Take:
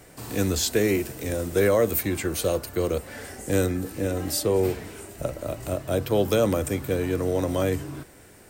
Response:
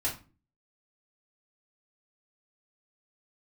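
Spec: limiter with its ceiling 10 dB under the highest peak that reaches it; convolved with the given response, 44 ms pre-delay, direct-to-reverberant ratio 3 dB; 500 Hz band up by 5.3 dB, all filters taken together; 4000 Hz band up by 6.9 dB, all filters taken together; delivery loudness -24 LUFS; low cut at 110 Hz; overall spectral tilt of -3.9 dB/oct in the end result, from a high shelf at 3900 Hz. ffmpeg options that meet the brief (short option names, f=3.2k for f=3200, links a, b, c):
-filter_complex "[0:a]highpass=110,equalizer=f=500:t=o:g=6,highshelf=f=3.9k:g=8.5,equalizer=f=4k:t=o:g=3,alimiter=limit=-14dB:level=0:latency=1,asplit=2[a][b];[1:a]atrim=start_sample=2205,adelay=44[c];[b][c]afir=irnorm=-1:irlink=0,volume=-8.5dB[d];[a][d]amix=inputs=2:normalize=0,volume=-1dB"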